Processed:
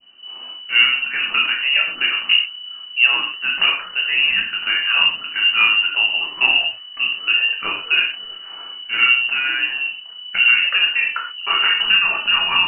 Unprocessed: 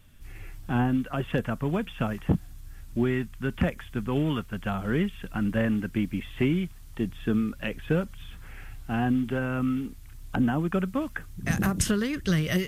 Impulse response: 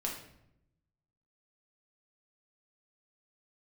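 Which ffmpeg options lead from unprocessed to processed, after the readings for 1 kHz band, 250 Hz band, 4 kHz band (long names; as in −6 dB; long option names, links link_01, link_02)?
+9.0 dB, −19.5 dB, +27.5 dB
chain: -filter_complex "[0:a]lowpass=frequency=2600:width_type=q:width=0.5098,lowpass=frequency=2600:width_type=q:width=0.6013,lowpass=frequency=2600:width_type=q:width=0.9,lowpass=frequency=2600:width_type=q:width=2.563,afreqshift=-3000[link_01];[1:a]atrim=start_sample=2205,atrim=end_sample=6174[link_02];[link_01][link_02]afir=irnorm=-1:irlink=0,adynamicequalizer=threshold=0.0178:dfrequency=1600:dqfactor=0.78:tfrequency=1600:tqfactor=0.78:attack=5:release=100:ratio=0.375:range=3:mode=boostabove:tftype=bell,volume=4dB"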